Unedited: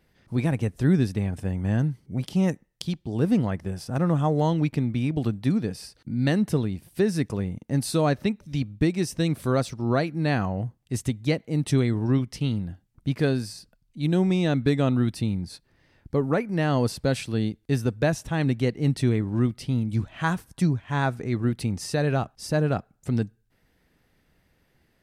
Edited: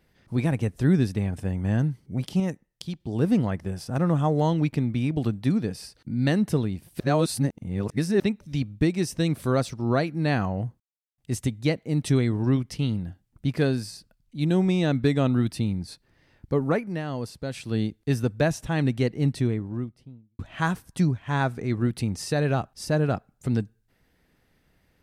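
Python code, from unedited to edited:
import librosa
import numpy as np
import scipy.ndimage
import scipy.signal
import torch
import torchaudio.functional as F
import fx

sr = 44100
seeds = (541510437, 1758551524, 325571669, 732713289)

y = fx.studio_fade_out(x, sr, start_s=18.66, length_s=1.35)
y = fx.edit(y, sr, fx.clip_gain(start_s=2.4, length_s=0.6, db=-4.5),
    fx.reverse_span(start_s=7.0, length_s=1.2),
    fx.insert_silence(at_s=10.8, length_s=0.38),
    fx.fade_down_up(start_s=16.38, length_s=1.02, db=-8.5, fade_s=0.27), tone=tone)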